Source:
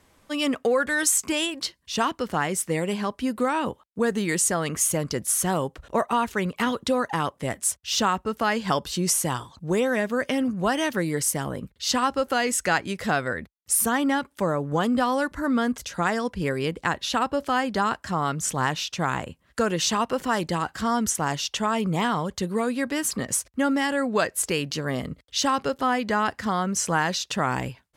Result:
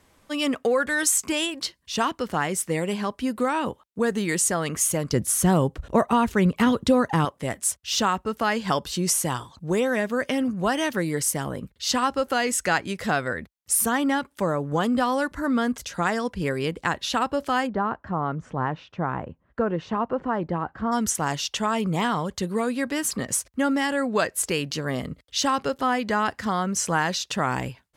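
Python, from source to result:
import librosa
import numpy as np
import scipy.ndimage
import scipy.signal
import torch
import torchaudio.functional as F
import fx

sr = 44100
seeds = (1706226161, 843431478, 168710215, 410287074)

y = fx.low_shelf(x, sr, hz=330.0, db=11.0, at=(5.13, 7.25))
y = fx.lowpass(y, sr, hz=1200.0, slope=12, at=(17.66, 20.91), fade=0.02)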